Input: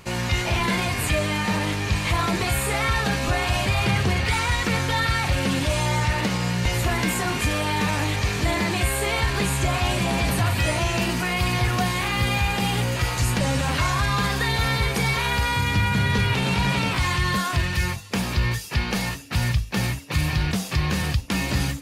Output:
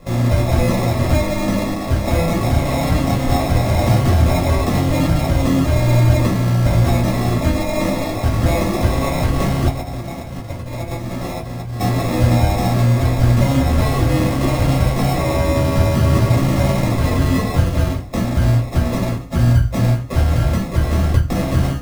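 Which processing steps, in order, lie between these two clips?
low-shelf EQ 210 Hz +2.5 dB
mains-hum notches 50/100/150 Hz
0:09.68–0:11.80: compressor whose output falls as the input rises −29 dBFS, ratio −0.5
decimation without filtering 29×
convolution reverb RT60 0.20 s, pre-delay 3 ms, DRR −4 dB
level −4 dB

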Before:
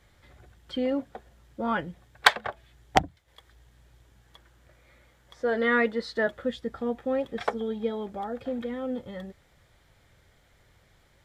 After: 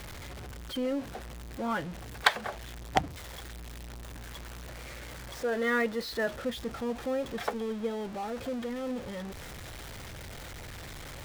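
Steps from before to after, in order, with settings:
converter with a step at zero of −32 dBFS
level −5.5 dB
IMA ADPCM 176 kbit/s 44,100 Hz

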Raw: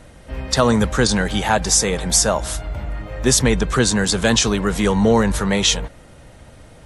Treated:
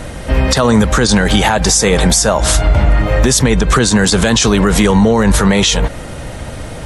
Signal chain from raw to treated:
0:02.38–0:02.99: low-pass filter 9,700 Hz 12 dB per octave
downward compressor, threshold −22 dBFS, peak gain reduction 11.5 dB
boost into a limiter +18.5 dB
level −1 dB

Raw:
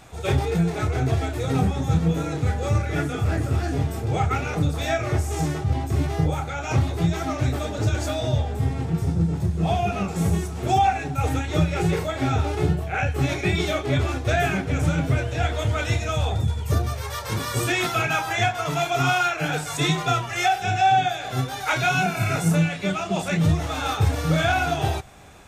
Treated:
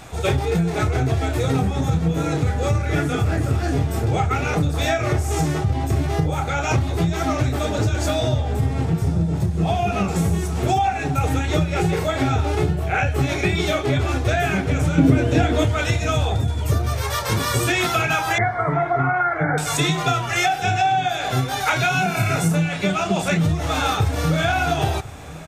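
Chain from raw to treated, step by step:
0:18.38–0:19.58: linear-phase brick-wall low-pass 2,300 Hz
downward compressor, threshold −24 dBFS, peak gain reduction 9.5 dB
0:14.98–0:15.65: parametric band 270 Hz +14.5 dB 1.1 octaves
slap from a distant wall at 180 metres, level −18 dB
level +7.5 dB

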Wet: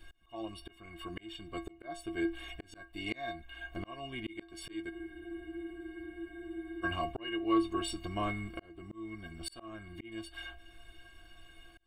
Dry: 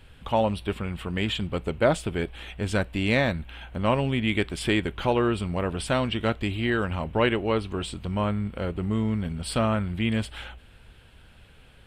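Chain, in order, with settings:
stiff-string resonator 330 Hz, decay 0.25 s, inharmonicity 0.03
volume swells 752 ms
frozen spectrum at 0:04.93, 1.91 s
level +13.5 dB

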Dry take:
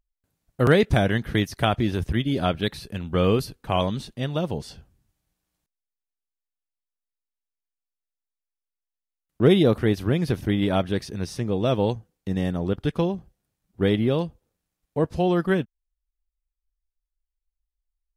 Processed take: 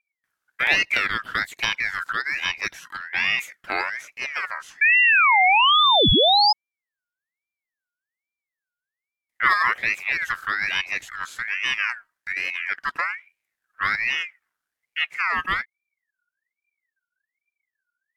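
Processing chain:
sound drawn into the spectrogram rise, 0:04.81–0:06.53, 300–3,000 Hz −13 dBFS
ring modulator whose carrier an LFO sweeps 1,900 Hz, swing 25%, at 1.2 Hz

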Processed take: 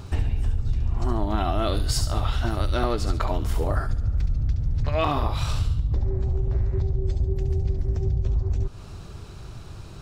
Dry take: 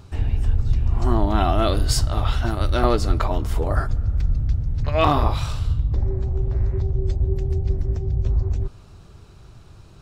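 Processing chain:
downward compressor 6 to 1, threshold −26 dBFS, peak gain reduction 13.5 dB
on a send: delay with a high-pass on its return 70 ms, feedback 33%, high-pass 2,500 Hz, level −6 dB
on the sum: level +6 dB

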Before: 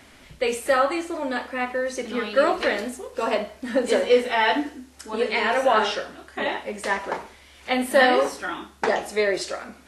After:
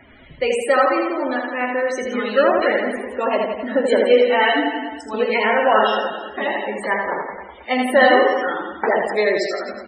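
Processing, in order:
reverse bouncing-ball delay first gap 80 ms, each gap 1.1×, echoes 5
spectral peaks only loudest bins 64
level +3 dB

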